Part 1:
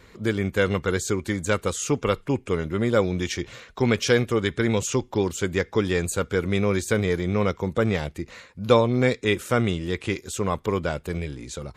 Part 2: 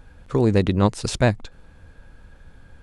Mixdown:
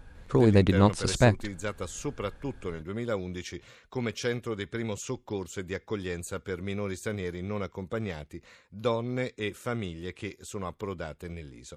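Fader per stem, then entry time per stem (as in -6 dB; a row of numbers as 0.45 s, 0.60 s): -10.5 dB, -2.5 dB; 0.15 s, 0.00 s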